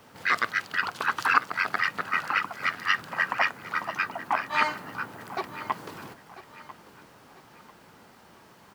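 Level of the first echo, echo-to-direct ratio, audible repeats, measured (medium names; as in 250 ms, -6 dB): -16.0 dB, -15.5 dB, 3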